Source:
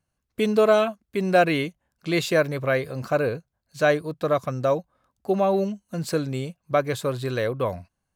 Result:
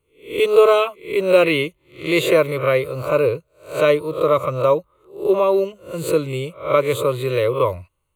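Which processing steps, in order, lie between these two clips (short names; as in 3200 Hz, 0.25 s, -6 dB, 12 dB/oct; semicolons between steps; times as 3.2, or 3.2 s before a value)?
spectral swells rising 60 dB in 0.38 s; fixed phaser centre 1100 Hz, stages 8; gain +7.5 dB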